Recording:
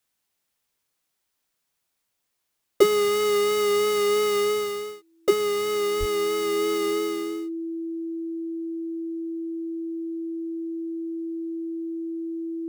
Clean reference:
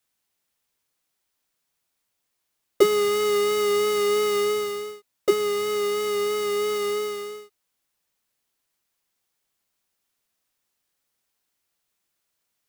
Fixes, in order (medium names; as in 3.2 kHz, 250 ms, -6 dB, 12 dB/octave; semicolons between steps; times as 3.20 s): band-stop 330 Hz, Q 30; de-plosive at 5.99 s